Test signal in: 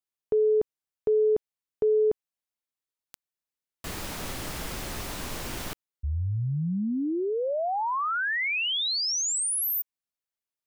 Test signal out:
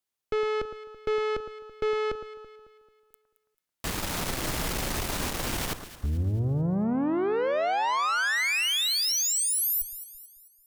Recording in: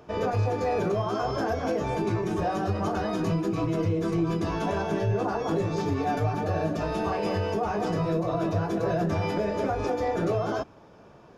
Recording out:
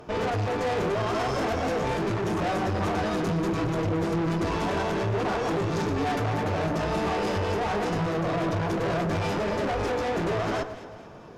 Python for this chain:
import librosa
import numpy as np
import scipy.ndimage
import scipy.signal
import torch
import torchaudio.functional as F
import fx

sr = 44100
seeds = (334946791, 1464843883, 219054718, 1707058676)

y = fx.tube_stage(x, sr, drive_db=34.0, bias=0.7)
y = fx.echo_alternate(y, sr, ms=110, hz=1600.0, feedback_pct=66, wet_db=-10)
y = y * librosa.db_to_amplitude(9.0)